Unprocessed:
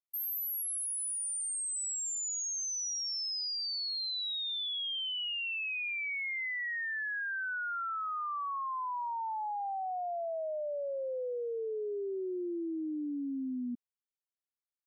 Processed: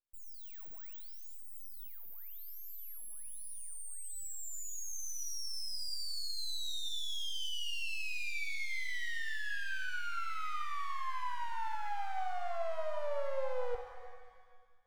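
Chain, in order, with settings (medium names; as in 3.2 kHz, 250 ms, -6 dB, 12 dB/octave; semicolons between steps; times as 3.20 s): tone controls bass +7 dB, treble -11 dB; full-wave rectifier; pitch-shifted reverb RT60 1.6 s, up +7 st, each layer -8 dB, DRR 5.5 dB; trim +1.5 dB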